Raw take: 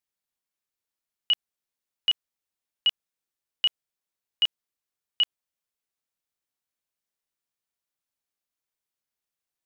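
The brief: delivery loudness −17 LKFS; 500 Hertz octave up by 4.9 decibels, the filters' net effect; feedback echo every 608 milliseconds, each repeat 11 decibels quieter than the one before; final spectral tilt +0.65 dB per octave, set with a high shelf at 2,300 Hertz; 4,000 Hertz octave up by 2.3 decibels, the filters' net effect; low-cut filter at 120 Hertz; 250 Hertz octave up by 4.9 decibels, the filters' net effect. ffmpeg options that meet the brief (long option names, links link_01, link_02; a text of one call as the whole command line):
ffmpeg -i in.wav -af "highpass=120,equalizer=frequency=250:width_type=o:gain=5,equalizer=frequency=500:width_type=o:gain=5,highshelf=frequency=2300:gain=-4,equalizer=frequency=4000:width_type=o:gain=8.5,aecho=1:1:608|1216|1824:0.282|0.0789|0.0221,volume=9dB" out.wav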